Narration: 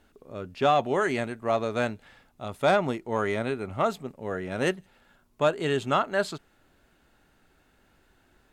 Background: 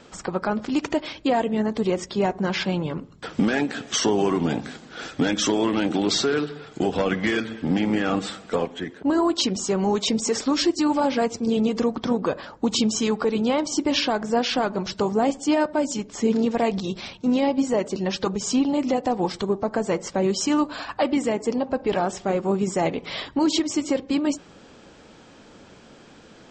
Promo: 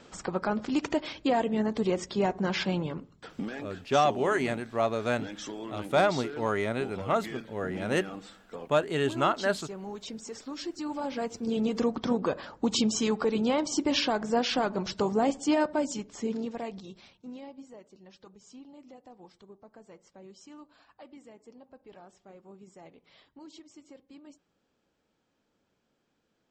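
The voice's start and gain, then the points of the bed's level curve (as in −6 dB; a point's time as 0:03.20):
3.30 s, −1.5 dB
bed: 0:02.79 −4.5 dB
0:03.65 −17.5 dB
0:10.47 −17.5 dB
0:11.84 −4.5 dB
0:15.71 −4.5 dB
0:17.88 −28 dB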